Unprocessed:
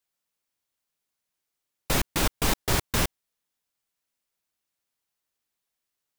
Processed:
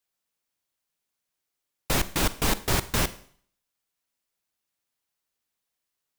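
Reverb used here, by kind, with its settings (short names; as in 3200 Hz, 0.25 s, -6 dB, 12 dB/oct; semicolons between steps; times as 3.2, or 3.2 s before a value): Schroeder reverb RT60 0.54 s, combs from 33 ms, DRR 14.5 dB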